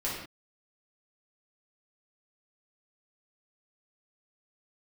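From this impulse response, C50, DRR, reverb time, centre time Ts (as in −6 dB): 1.0 dB, −7.5 dB, non-exponential decay, 54 ms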